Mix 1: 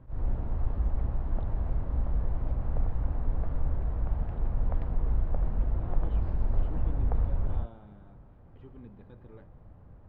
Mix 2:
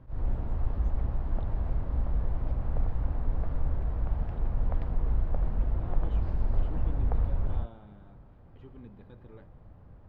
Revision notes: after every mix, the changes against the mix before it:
master: add treble shelf 4 kHz +8.5 dB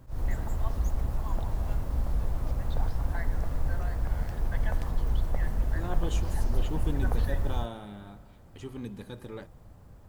first voice: unmuted; second voice +10.0 dB; master: remove distance through air 380 m

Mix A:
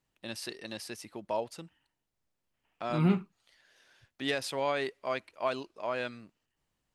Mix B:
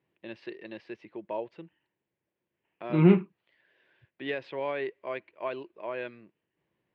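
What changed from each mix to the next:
second voice +8.0 dB; master: add cabinet simulation 150–2700 Hz, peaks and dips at 250 Hz -6 dB, 350 Hz +6 dB, 760 Hz -6 dB, 1.3 kHz -9 dB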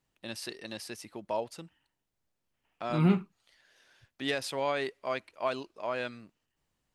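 second voice -6.5 dB; master: remove cabinet simulation 150–2700 Hz, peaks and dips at 250 Hz -6 dB, 350 Hz +6 dB, 760 Hz -6 dB, 1.3 kHz -9 dB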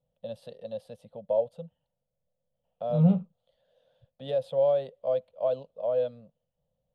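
master: add FFT filter 100 Hz 0 dB, 160 Hz +6 dB, 250 Hz -5 dB, 350 Hz -24 dB, 510 Hz +14 dB, 1 kHz -11 dB, 2.2 kHz -24 dB, 3.4 kHz -7 dB, 5.5 kHz -27 dB, 9.2 kHz -20 dB

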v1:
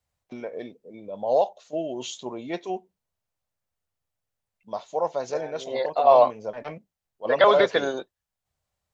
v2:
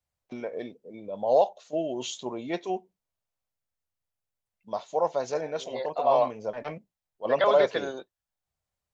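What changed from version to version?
second voice -7.0 dB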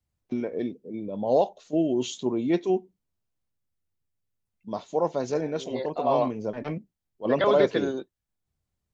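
master: add resonant low shelf 440 Hz +8.5 dB, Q 1.5

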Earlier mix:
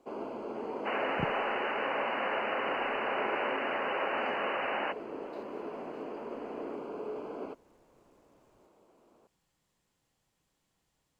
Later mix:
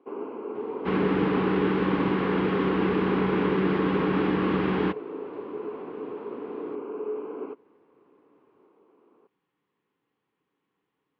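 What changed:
second sound: remove brick-wall FIR band-pass 490–3000 Hz; master: add cabinet simulation 170–2900 Hz, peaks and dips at 290 Hz +6 dB, 420 Hz +9 dB, 630 Hz -10 dB, 1.1 kHz +5 dB

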